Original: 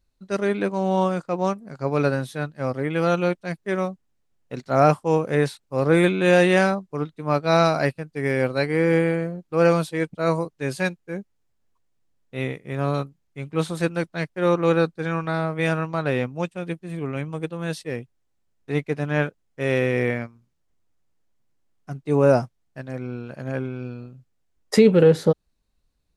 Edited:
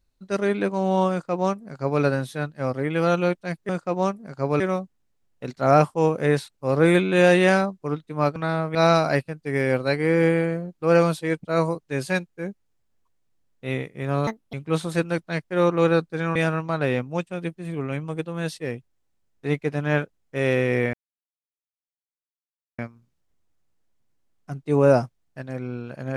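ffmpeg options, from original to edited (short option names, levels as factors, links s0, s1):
-filter_complex "[0:a]asplit=9[s0][s1][s2][s3][s4][s5][s6][s7][s8];[s0]atrim=end=3.692[s9];[s1]atrim=start=1.108:end=2.022[s10];[s2]atrim=start=3.688:end=7.452[s11];[s3]atrim=start=15.208:end=15.602[s12];[s4]atrim=start=7.448:end=12.974[s13];[s5]atrim=start=12.97:end=13.39,asetpts=PTS-STARTPTS,asetrate=70119,aresample=44100,atrim=end_sample=11649,asetpts=PTS-STARTPTS[s14];[s6]atrim=start=13.386:end=15.212[s15];[s7]atrim=start=15.598:end=20.18,asetpts=PTS-STARTPTS,afade=t=out:st=4.578:d=0.004:c=hsin,apad=pad_dur=1.85[s16];[s8]atrim=start=20.18,asetpts=PTS-STARTPTS,afade=t=in:d=0.004:c=hsin[s17];[s9][s10]acrossfade=d=0.004:c1=hsin:c2=hsin[s18];[s18][s11]acrossfade=d=0.004:c1=hsin:c2=hsin[s19];[s19][s12]acrossfade=d=0.004:c1=hsin:c2=hsin[s20];[s20][s13]acrossfade=d=0.004:c1=hsin:c2=hsin[s21];[s21][s14]acrossfade=d=0.004:c1=hsin:c2=hsin[s22];[s22][s15]acrossfade=d=0.004:c1=hsin:c2=hsin[s23];[s16][s17]concat=n=2:v=0:a=1[s24];[s23][s24]acrossfade=d=0.004:c1=hsin:c2=hsin"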